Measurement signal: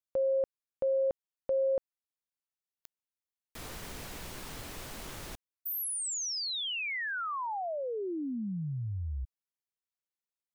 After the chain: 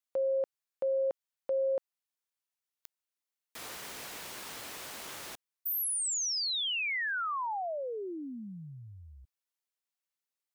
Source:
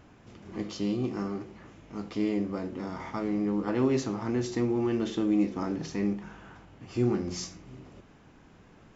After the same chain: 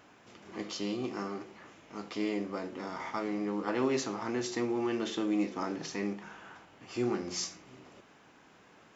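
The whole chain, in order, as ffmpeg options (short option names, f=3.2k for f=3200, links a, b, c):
-af "highpass=f=630:p=1,volume=2.5dB"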